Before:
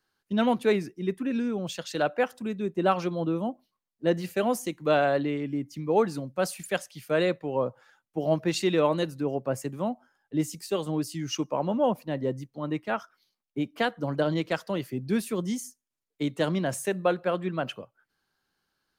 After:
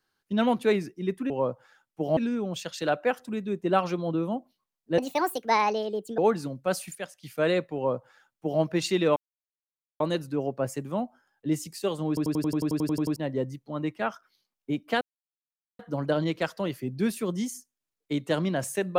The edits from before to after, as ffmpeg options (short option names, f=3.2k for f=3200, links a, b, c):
-filter_complex "[0:a]asplit=21[a][b][c][d][e][f][g][h][i][j][k][l][m][n][o][p][q][r][s][t][u];[a]atrim=end=1.302[v];[b]atrim=start=7.468:end=8.342[w];[c]atrim=start=1.298:end=4.114[x];[d]atrim=start=4.11:end=5.9,asetpts=PTS-STARTPTS,asetrate=65709,aresample=44100,atrim=end_sample=52979,asetpts=PTS-STARTPTS[y];[e]atrim=start=5.896:end=6.672[z];[f]atrim=start=6.668:end=6.952,asetpts=PTS-STARTPTS,volume=-8dB[aa];[g]atrim=start=6.948:end=8.88,asetpts=PTS-STARTPTS,afade=t=out:st=1.928:d=0.004:c=hsin,apad=pad_dur=0.84[ab];[h]atrim=start=8.88:end=11.052,asetpts=PTS-STARTPTS,afade=t=in:d=0.004:c=hsin[ac];[i]atrim=start=10.958:end=11.052[ad];[j]atrim=start=10.958:end=11.052[ae];[k]atrim=start=10.958:end=11.052[af];[l]atrim=start=10.958:end=11.052[ag];[m]atrim=start=10.958:end=11.052[ah];[n]atrim=start=10.958:end=11.052[ai];[o]atrim=start=10.958:end=11.052[aj];[p]atrim=start=10.958:end=11.052[ak];[q]atrim=start=10.958:end=11.052[al];[r]atrim=start=10.958:end=11.052[am];[s]atrim=start=10.958:end=11.052[an];[t]atrim=start=12.038:end=13.89,asetpts=PTS-STARTPTS,afade=t=out:st=1.848:d=0.004:c=hsin,apad=pad_dur=0.78[ao];[u]atrim=start=13.89,asetpts=PTS-STARTPTS,afade=t=in:d=0.004:c=hsin[ap];[v][w]acrossfade=d=0.004:c1=hsin:c2=hsin[aq];[aq][x]acrossfade=d=0.004:c1=hsin:c2=hsin[ar];[ar][y]acrossfade=d=0.004:c1=hsin:c2=hsin[as];[as][z]acrossfade=d=0.004:c1=hsin:c2=hsin[at];[at][aa]acrossfade=d=0.004:c1=hsin:c2=hsin[au];[ab][ac]concat=n=2:v=0:a=1[av];[au][av]acrossfade=d=0.004:c1=hsin:c2=hsin[aw];[aw][ad]acrossfade=d=0.004:c1=hsin:c2=hsin[ax];[ax][ae]acrossfade=d=0.004:c1=hsin:c2=hsin[ay];[ay][af]acrossfade=d=0.004:c1=hsin:c2=hsin[az];[az][ag]acrossfade=d=0.004:c1=hsin:c2=hsin[ba];[ba][ah]acrossfade=d=0.004:c1=hsin:c2=hsin[bb];[bb][ai]acrossfade=d=0.004:c1=hsin:c2=hsin[bc];[bc][aj]acrossfade=d=0.004:c1=hsin:c2=hsin[bd];[bd][ak]acrossfade=d=0.004:c1=hsin:c2=hsin[be];[be][al]acrossfade=d=0.004:c1=hsin:c2=hsin[bf];[bf][am]acrossfade=d=0.004:c1=hsin:c2=hsin[bg];[bg][an]acrossfade=d=0.004:c1=hsin:c2=hsin[bh];[ao][ap]concat=n=2:v=0:a=1[bi];[bh][bi]acrossfade=d=0.004:c1=hsin:c2=hsin"